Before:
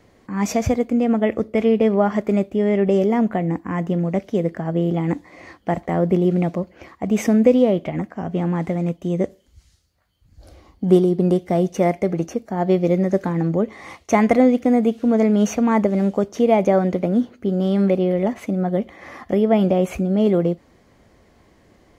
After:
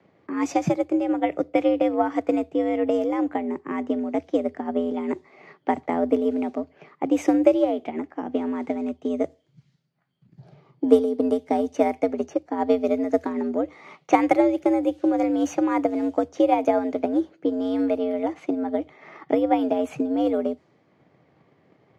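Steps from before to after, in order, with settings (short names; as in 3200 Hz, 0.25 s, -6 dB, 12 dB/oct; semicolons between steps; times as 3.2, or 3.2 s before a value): low-pass opened by the level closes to 3000 Hz, open at -13 dBFS; transient shaper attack +7 dB, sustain -1 dB; frequency shift +79 Hz; gain -6.5 dB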